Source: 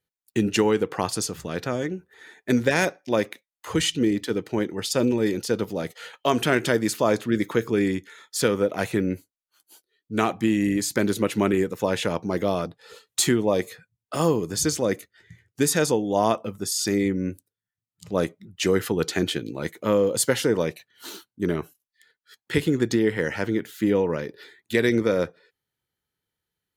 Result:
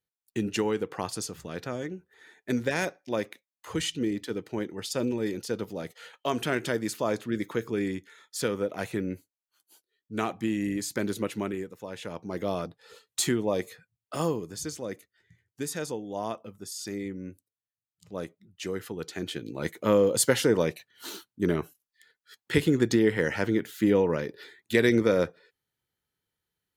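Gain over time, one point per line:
11.24 s -7 dB
11.85 s -16 dB
12.52 s -5.5 dB
14.2 s -5.5 dB
14.6 s -12 dB
19.13 s -12 dB
19.69 s -1 dB

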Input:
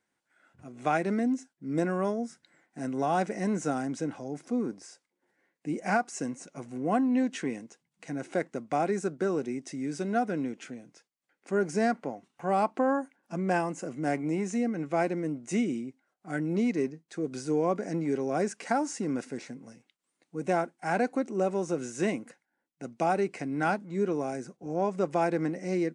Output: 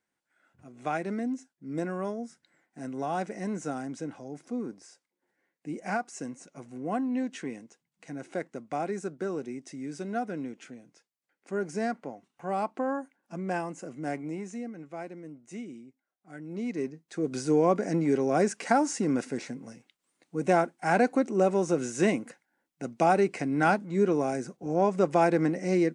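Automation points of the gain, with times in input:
14.12 s -4 dB
14.97 s -12 dB
16.39 s -12 dB
16.74 s -4 dB
17.35 s +4 dB

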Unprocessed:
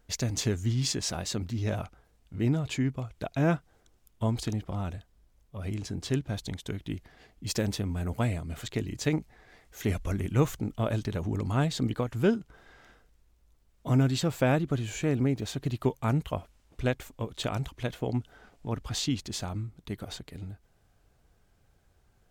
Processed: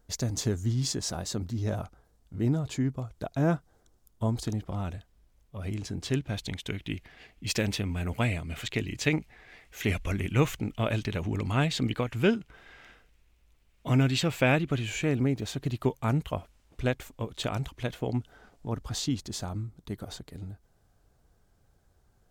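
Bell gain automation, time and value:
bell 2500 Hz 1 oct
4.35 s -8 dB
4.81 s +1 dB
5.93 s +1 dB
6.6 s +10 dB
14.78 s +10 dB
15.29 s +1 dB
18.07 s +1 dB
18.75 s -6 dB

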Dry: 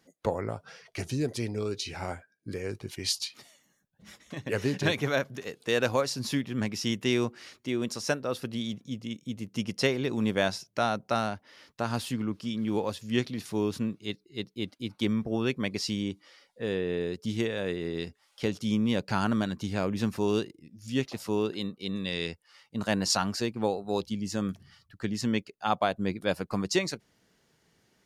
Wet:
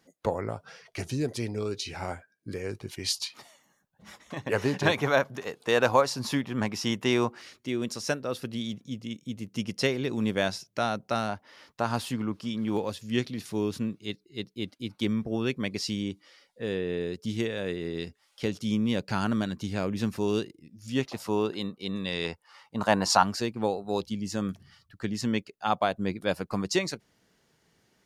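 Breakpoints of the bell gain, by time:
bell 920 Hz 1.3 oct
+1.5 dB
from 3.21 s +9.5 dB
from 7.41 s -1.5 dB
from 11.29 s +5 dB
from 12.77 s -2 dB
from 20.8 s +5 dB
from 22.24 s +12 dB
from 23.23 s +1 dB

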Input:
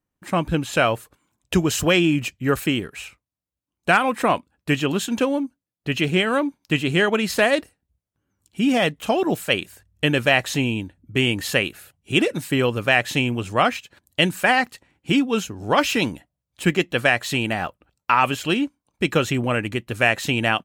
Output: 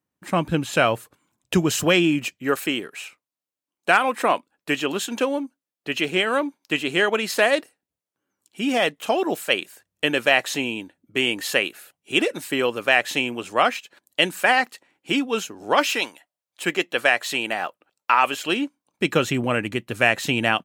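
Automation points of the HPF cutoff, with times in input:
1.63 s 110 Hz
2.57 s 320 Hz
15.86 s 320 Hz
16.12 s 860 Hz
16.69 s 390 Hz
18.31 s 390 Hz
19.29 s 130 Hz

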